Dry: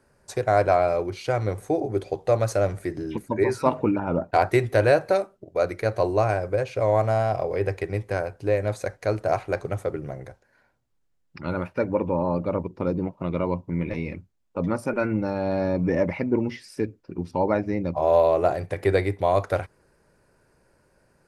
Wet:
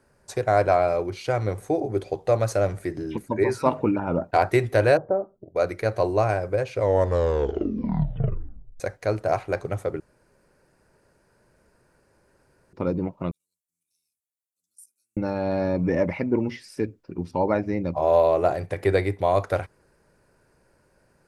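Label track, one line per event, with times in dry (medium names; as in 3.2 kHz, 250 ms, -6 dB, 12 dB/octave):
4.970000	5.560000	Gaussian low-pass sigma 8.5 samples
6.720000	6.720000	tape stop 2.08 s
10.000000	12.730000	room tone
13.310000	15.170000	inverse Chebyshev high-pass stop band from 2 kHz, stop band 70 dB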